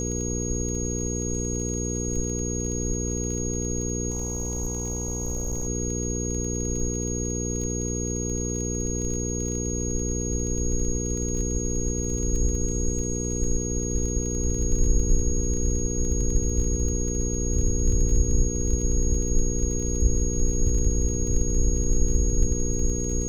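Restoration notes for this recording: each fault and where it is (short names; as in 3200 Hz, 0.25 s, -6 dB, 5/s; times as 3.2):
crackle 22/s -31 dBFS
hum 60 Hz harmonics 8 -29 dBFS
tone 6600 Hz -31 dBFS
4.1–5.67 clipped -24 dBFS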